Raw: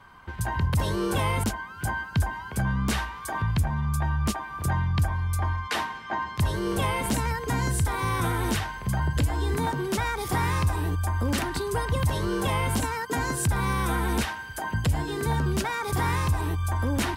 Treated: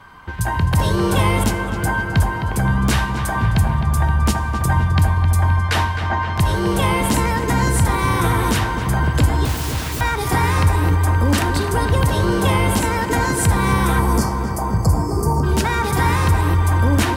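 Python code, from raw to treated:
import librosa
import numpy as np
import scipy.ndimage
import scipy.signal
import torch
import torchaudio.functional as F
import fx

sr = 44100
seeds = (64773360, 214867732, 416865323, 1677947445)

p1 = fx.overflow_wrap(x, sr, gain_db=32.5, at=(9.45, 10.01))
p2 = fx.spec_erase(p1, sr, start_s=14.0, length_s=1.43, low_hz=1300.0, high_hz=4300.0)
p3 = p2 + fx.echo_filtered(p2, sr, ms=261, feedback_pct=78, hz=3000.0, wet_db=-8.0, dry=0)
p4 = fx.rev_double_slope(p3, sr, seeds[0], early_s=0.77, late_s=3.0, knee_db=-18, drr_db=12.0)
y = F.gain(torch.from_numpy(p4), 7.5).numpy()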